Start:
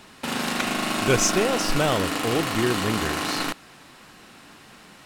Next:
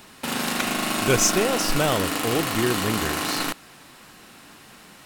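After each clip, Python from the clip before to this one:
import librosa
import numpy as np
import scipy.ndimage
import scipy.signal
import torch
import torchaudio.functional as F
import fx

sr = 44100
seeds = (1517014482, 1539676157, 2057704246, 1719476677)

y = fx.high_shelf(x, sr, hz=11000.0, db=11.5)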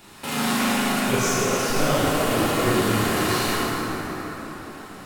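y = fx.rider(x, sr, range_db=5, speed_s=0.5)
y = fx.rev_plate(y, sr, seeds[0], rt60_s=5.0, hf_ratio=0.45, predelay_ms=0, drr_db=-9.5)
y = y * 10.0 ** (-8.5 / 20.0)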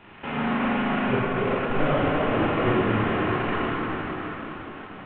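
y = fx.cvsd(x, sr, bps=16000)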